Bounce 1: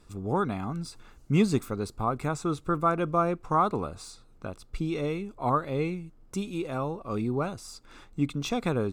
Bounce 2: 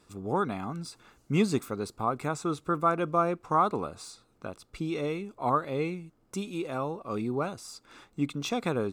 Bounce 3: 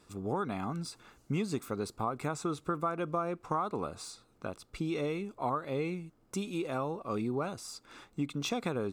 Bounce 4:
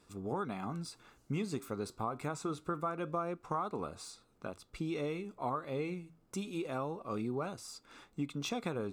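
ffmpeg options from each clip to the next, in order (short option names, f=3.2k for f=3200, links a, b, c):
-af "highpass=f=190:p=1"
-af "acompressor=threshold=-29dB:ratio=6"
-af "flanger=delay=4.3:depth=4.9:regen=-83:speed=0.25:shape=sinusoidal,volume=1dB"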